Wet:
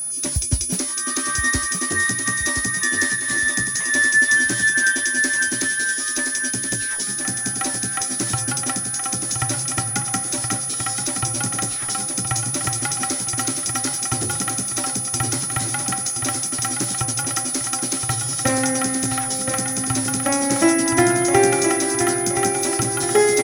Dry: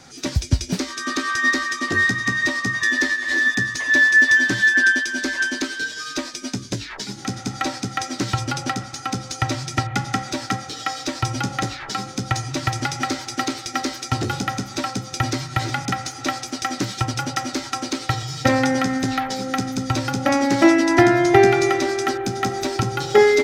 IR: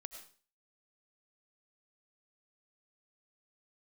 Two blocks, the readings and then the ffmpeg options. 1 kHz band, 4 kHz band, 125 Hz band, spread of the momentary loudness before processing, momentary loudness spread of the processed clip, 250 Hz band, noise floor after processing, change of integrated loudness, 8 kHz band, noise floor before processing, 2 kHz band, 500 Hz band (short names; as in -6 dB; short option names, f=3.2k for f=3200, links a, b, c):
-2.0 dB, -0.5 dB, -2.0 dB, 13 LU, 5 LU, -2.0 dB, -26 dBFS, +1.0 dB, +12.5 dB, -37 dBFS, -2.0 dB, -2.5 dB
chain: -af "aecho=1:1:1022|2044|3066|4088|5110|6132:0.473|0.227|0.109|0.0523|0.0251|0.0121,aeval=exprs='val(0)+0.0224*sin(2*PI*9900*n/s)':c=same,aexciter=amount=4.6:drive=3.2:freq=5.9k,volume=-3dB"